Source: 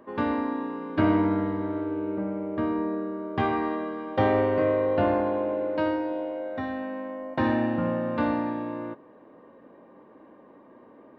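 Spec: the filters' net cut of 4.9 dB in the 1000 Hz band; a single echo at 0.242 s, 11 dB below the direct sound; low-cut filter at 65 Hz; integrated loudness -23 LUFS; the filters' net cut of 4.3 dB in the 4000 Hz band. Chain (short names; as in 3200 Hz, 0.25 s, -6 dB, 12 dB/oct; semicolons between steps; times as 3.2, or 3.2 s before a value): HPF 65 Hz; bell 1000 Hz -6 dB; bell 4000 Hz -6 dB; echo 0.242 s -11 dB; gain +6 dB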